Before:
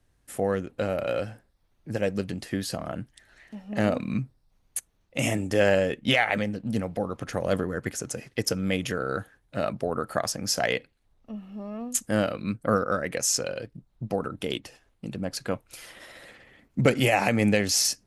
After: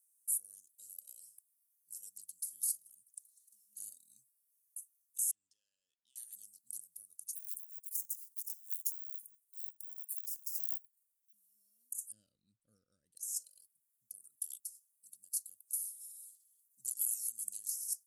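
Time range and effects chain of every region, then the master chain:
5.31–6.16 LPF 2900 Hz 24 dB/oct + tilt shelf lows -7.5 dB, about 1400 Hz + compressor 4:1, threshold -39 dBFS
7.35–11.33 bell 160 Hz -12 dB 0.98 oct + careless resampling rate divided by 2×, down filtered, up hold + Doppler distortion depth 0.19 ms
12.12–13.16 LPF 3400 Hz + tilt -3.5 dB/oct
whole clip: inverse Chebyshev high-pass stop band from 2400 Hz, stop band 70 dB; negative-ratio compressor -44 dBFS, ratio -1; gain +8 dB

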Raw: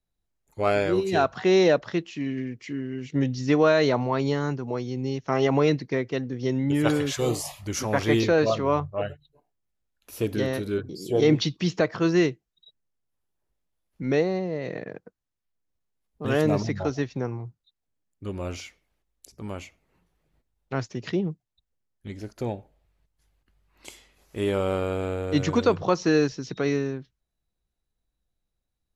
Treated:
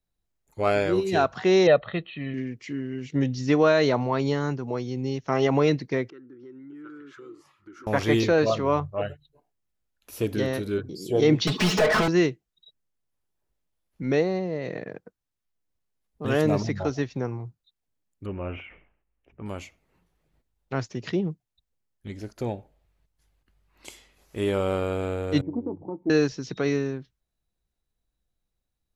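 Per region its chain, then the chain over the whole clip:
1.67–2.34 brick-wall FIR low-pass 4300 Hz + comb 1.6 ms, depth 57%
6.1–7.87 double band-pass 680 Hz, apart 2 oct + compressor 3:1, threshold -44 dBFS
11.47–12.08 compressor 2.5:1, threshold -33 dBFS + overdrive pedal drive 43 dB, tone 2000 Hz, clips at -14.5 dBFS + comb 4.7 ms, depth 75%
18.26–19.46 elliptic low-pass 2800 Hz + sustainer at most 95 dB/s
25.41–26.1 vocal tract filter u + doubler 21 ms -13 dB + Doppler distortion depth 0.14 ms
whole clip: dry

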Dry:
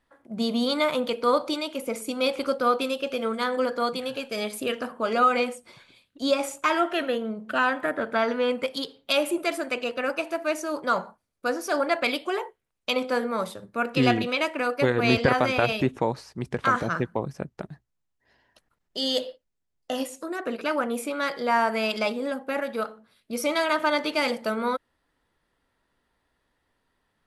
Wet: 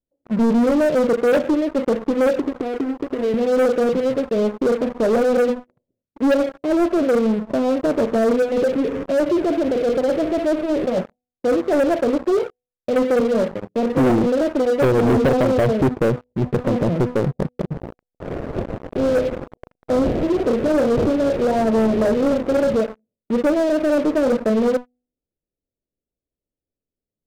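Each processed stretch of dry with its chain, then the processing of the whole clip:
2.39–3.34 HPF 64 Hz 24 dB/oct + compressor 5:1, threshold -32 dBFS + comb 2.8 ms, depth 96%
8.42–10.99 zero-crossing step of -31 dBFS + core saturation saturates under 2200 Hz
13.2–14.1 HPF 110 Hz + notches 60/120/180/240/300/360/420/480 Hz + doubler 29 ms -14 dB
17.71–22.8 switching spikes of -20.5 dBFS + doubler 36 ms -6.5 dB + decimation joined by straight lines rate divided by 4×
whole clip: steep low-pass 600 Hz 36 dB/oct; de-hum 246.7 Hz, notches 3; sample leveller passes 5; gain -3.5 dB

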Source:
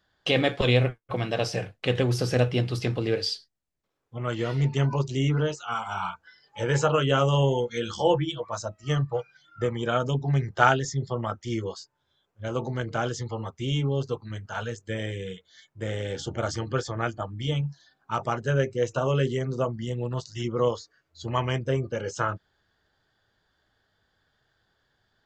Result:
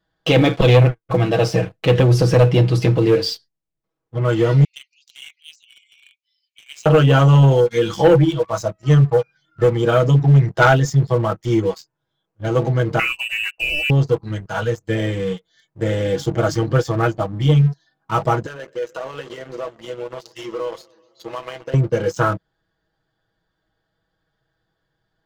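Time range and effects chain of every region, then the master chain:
4.64–6.86 steep high-pass 2200 Hz 96 dB/oct + high shelf 5000 Hz -10.5 dB
12.99–13.9 tilt -1.5 dB/oct + inverted band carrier 2800 Hz
18.46–21.74 BPF 520–6200 Hz + compressor 4:1, threshold -36 dBFS + warbling echo 0.128 s, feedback 74%, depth 156 cents, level -17.5 dB
whole clip: tilt shelf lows +4 dB; comb 6.2 ms, depth 66%; sample leveller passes 2

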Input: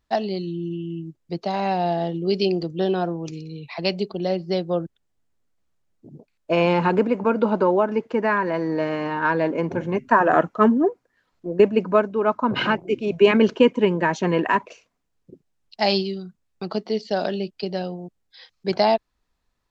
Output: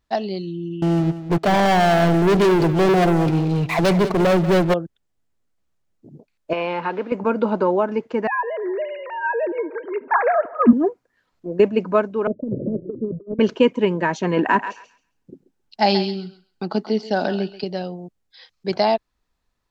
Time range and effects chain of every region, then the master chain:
0.82–4.74 air absorption 410 m + sample leveller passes 5 + feedback echo 0.188 s, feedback 19%, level -13 dB
6.53–7.12 zero-crossing step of -35 dBFS + HPF 770 Hz 6 dB/oct + air absorption 250 m
8.27–10.73 sine-wave speech + analogue delay 76 ms, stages 1024, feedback 76%, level -21 dB
12.27–13.39 steep low-pass 590 Hz 96 dB/oct + negative-ratio compressor -25 dBFS, ratio -0.5
14.37–17.64 small resonant body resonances 250/830/1500 Hz, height 7 dB, ringing for 20 ms + thinning echo 0.134 s, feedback 20%, high-pass 890 Hz, level -9 dB
whole clip: dry

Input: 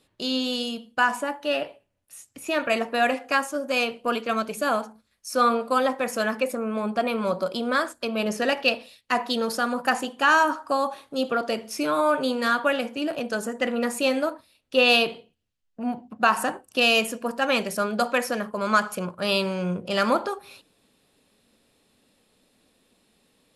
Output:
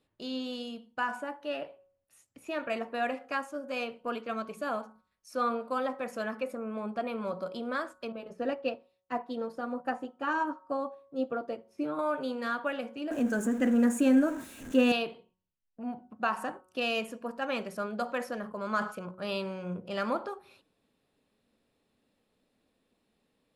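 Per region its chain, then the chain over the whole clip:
8.12–11.99 tilt shelf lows +6 dB, about 1100 Hz + notch comb 210 Hz + upward expander, over -42 dBFS
13.11–14.92 zero-crossing step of -32.5 dBFS + resonant high shelf 5700 Hz +6 dB, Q 3 + small resonant body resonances 260/1600 Hz, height 14 dB, ringing for 35 ms
18.06–18.94 bell 2400 Hz -4.5 dB 0.22 oct + sustainer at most 120 dB/s
whole clip: high shelf 3400 Hz -10.5 dB; de-hum 184.6 Hz, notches 8; gain -8.5 dB

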